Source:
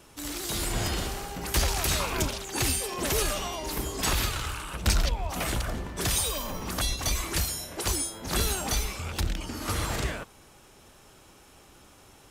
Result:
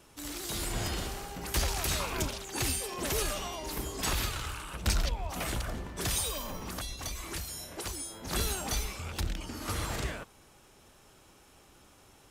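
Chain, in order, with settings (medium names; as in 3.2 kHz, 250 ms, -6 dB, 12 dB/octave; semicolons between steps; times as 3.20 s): 6.56–8.10 s: compression, threshold -30 dBFS, peak gain reduction 7.5 dB; trim -4.5 dB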